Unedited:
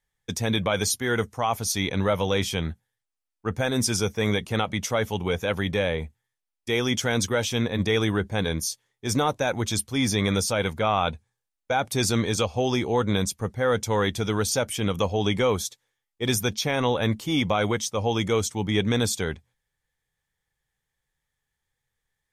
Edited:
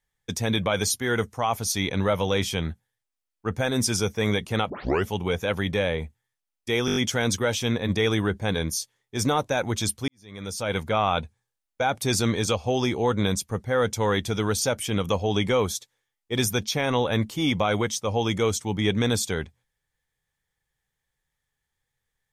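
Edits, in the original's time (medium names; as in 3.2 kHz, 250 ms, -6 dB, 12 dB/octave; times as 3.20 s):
4.70 s: tape start 0.36 s
6.86 s: stutter 0.02 s, 6 plays
9.98–10.68 s: fade in quadratic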